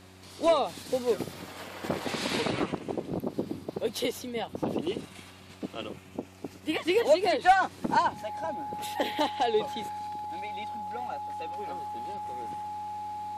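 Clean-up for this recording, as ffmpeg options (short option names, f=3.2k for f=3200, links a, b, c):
-af "bandreject=f=93.7:t=h:w=4,bandreject=f=187.4:t=h:w=4,bandreject=f=281.1:t=h:w=4,bandreject=f=374.8:t=h:w=4,bandreject=f=840:w=30"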